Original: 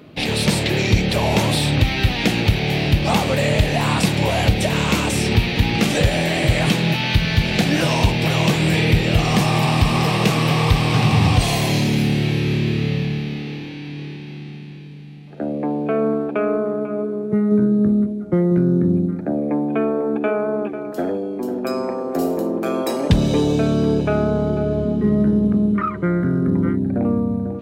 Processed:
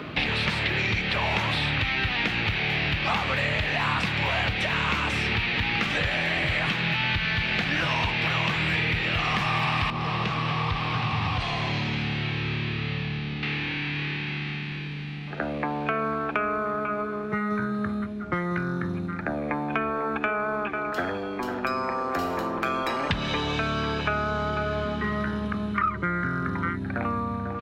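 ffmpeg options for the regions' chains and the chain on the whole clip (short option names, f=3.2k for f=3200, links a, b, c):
-filter_complex "[0:a]asettb=1/sr,asplit=3[a][b][c];[a]atrim=end=9.904[d];[b]atrim=start=9.9:end=13.43,asetpts=PTS-STARTPTS,afade=t=in:d=0.004:c=qsin,afade=t=out:st=3.526:d=0.004:c=qsin,lowpass=3.8k,equalizer=f=2k:w=0.52:g=-14[e];[c]atrim=start=13.426[f];[d][e]acrossfade=d=0.004:c1=hsin:c2=qsin[g];[g][f]acrossfade=d=0.004:c1=qsin:c2=hsin,firequalizer=gain_entry='entry(550,0);entry(1200,8);entry(8800,-12)':delay=0.05:min_phase=1,acrossover=split=97|1000|3800[h][i][j][k];[h]acompressor=threshold=-46dB:ratio=4[l];[i]acompressor=threshold=-45dB:ratio=4[m];[j]acompressor=threshold=-37dB:ratio=4[n];[k]acompressor=threshold=-56dB:ratio=4[o];[l][m][n][o]amix=inputs=4:normalize=0,volume=8.5dB"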